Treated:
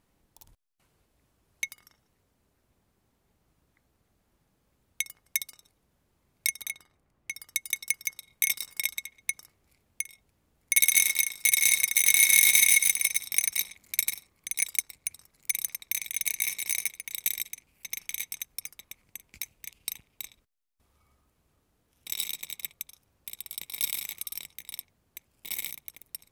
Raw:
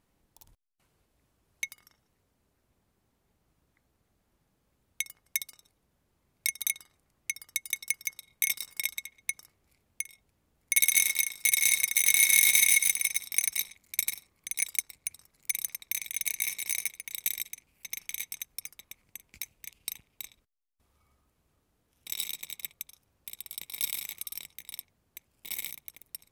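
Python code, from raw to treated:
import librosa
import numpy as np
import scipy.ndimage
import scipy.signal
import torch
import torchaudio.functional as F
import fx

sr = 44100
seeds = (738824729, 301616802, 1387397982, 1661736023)

y = fx.high_shelf(x, sr, hz=2900.0, db=-10.5, at=(6.61, 7.31))
y = fx.band_squash(y, sr, depth_pct=40, at=(13.02, 14.02))
y = y * librosa.db_to_amplitude(2.0)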